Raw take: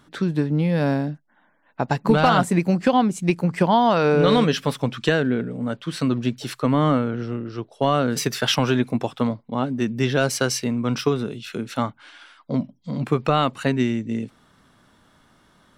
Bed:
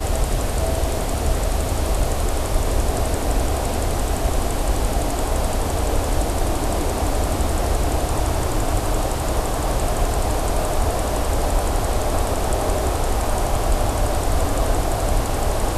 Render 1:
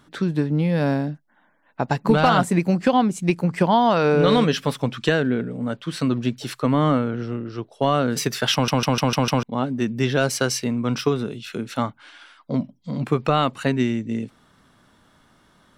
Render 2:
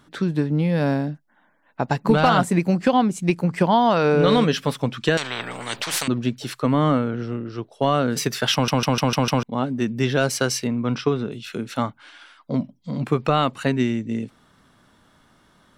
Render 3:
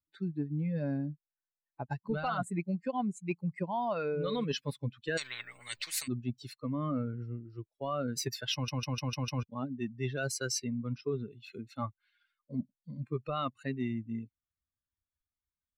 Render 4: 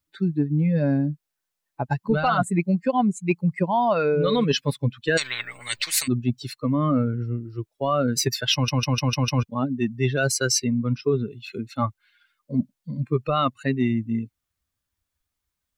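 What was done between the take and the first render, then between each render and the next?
8.53 stutter in place 0.15 s, 6 plays
5.17–6.08 spectral compressor 10:1; 10.67–11.32 air absorption 110 m
per-bin expansion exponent 2; reverse; compressor 6:1, threshold -31 dBFS, peak gain reduction 16 dB; reverse
gain +12 dB

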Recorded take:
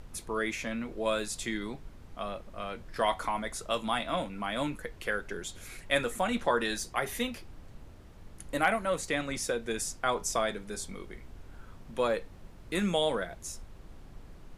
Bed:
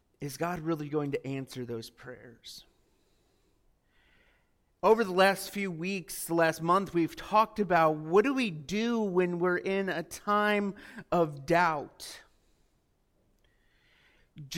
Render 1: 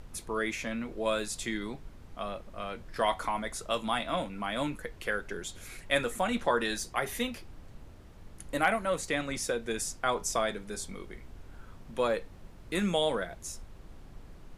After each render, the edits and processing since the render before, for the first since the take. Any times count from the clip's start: nothing audible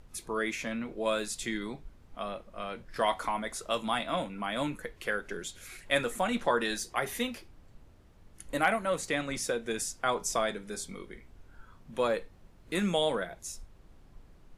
noise print and reduce 7 dB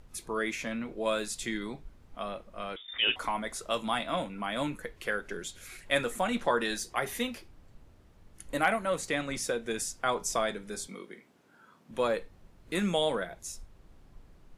2.76–3.16 inverted band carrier 3600 Hz; 10.87–11.91 HPF 170 Hz 24 dB/oct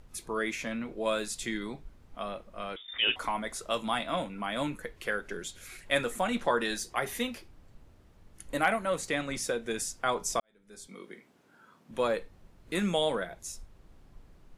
10.4–11.08 fade in quadratic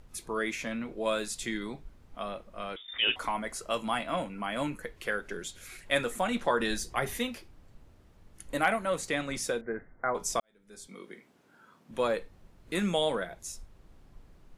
3.36–4.83 Butterworth band-stop 3600 Hz, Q 7.7; 6.6–7.17 low shelf 170 Hz +10.5 dB; 9.61–10.15 rippled Chebyshev low-pass 2100 Hz, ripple 3 dB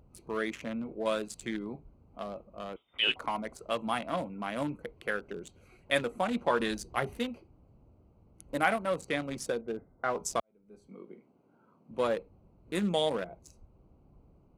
Wiener smoothing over 25 samples; HPF 52 Hz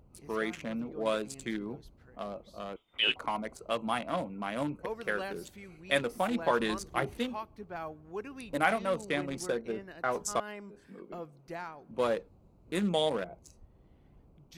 add bed -16 dB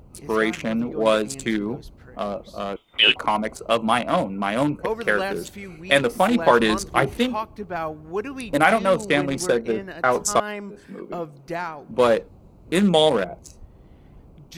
gain +12 dB; limiter -2 dBFS, peak gain reduction 2.5 dB

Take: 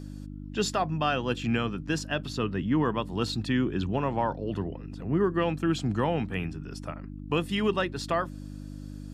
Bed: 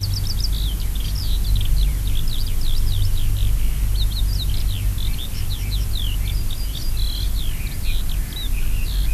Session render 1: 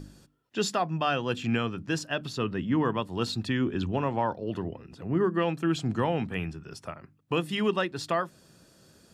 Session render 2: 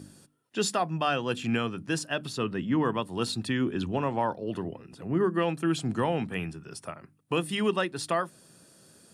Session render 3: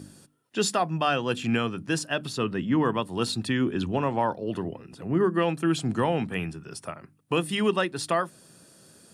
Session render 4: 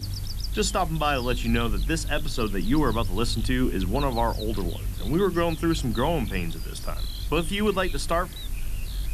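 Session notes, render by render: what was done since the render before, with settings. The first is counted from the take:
de-hum 50 Hz, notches 6
HPF 110 Hz; bell 9400 Hz +13.5 dB 0.33 oct
gain +2.5 dB
add bed -9.5 dB

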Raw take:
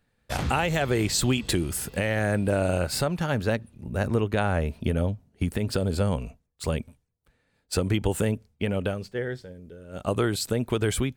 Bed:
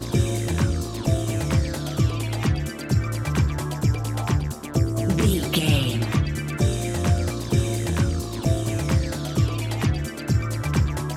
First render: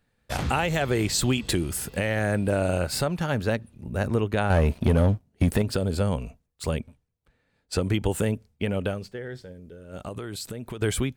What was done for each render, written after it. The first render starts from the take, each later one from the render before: 4.5–5.62 sample leveller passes 2; 6.78–7.8 high shelf 6300 Hz -> 11000 Hz -11.5 dB; 8.98–10.82 compressor, threshold -31 dBFS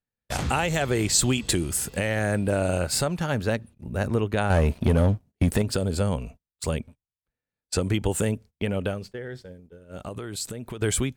gate -43 dBFS, range -21 dB; dynamic EQ 7500 Hz, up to +7 dB, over -47 dBFS, Q 1.3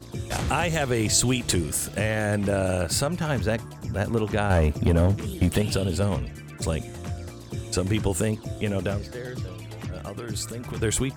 add bed -12.5 dB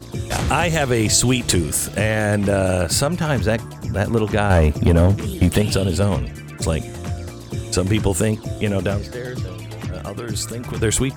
gain +6 dB; limiter -3 dBFS, peak gain reduction 2 dB

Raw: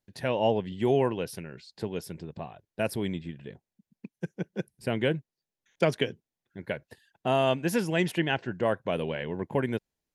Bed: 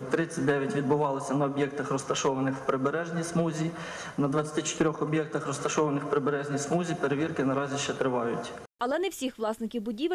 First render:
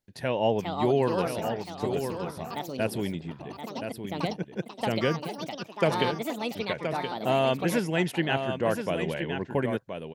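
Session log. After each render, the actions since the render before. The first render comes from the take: echoes that change speed 0.468 s, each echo +5 st, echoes 2, each echo -6 dB; echo 1.023 s -7.5 dB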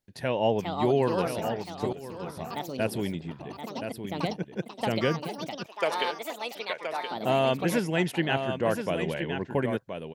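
1.93–2.41 fade in, from -17 dB; 5.66–7.11 HPF 550 Hz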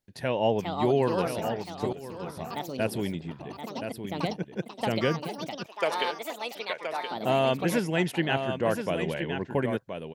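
nothing audible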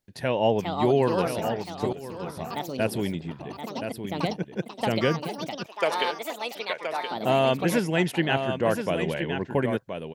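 gain +2.5 dB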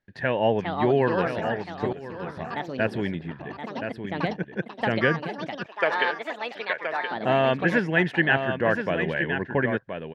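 LPF 3200 Hz 12 dB/oct; bell 1700 Hz +13 dB 0.34 oct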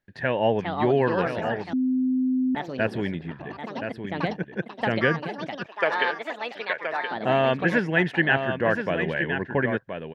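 1.73–2.55 bleep 257 Hz -20 dBFS

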